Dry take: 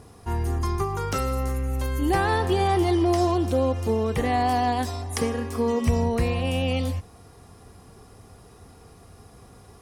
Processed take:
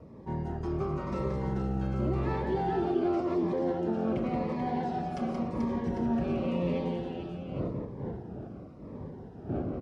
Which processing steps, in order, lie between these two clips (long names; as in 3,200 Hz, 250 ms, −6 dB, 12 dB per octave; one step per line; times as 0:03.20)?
lower of the sound and its delayed copy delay 5.3 ms
wind on the microphone 430 Hz −39 dBFS
high-pass filter 70 Hz
tilt shelving filter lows +6.5 dB, about 1,400 Hz
brickwall limiter −15 dBFS, peak gain reduction 7 dB
high-frequency loss of the air 140 metres
multi-tap delay 177/436/799 ms −4.5/−5/−9.5 dB
phaser whose notches keep moving one way falling 0.91 Hz
level −8 dB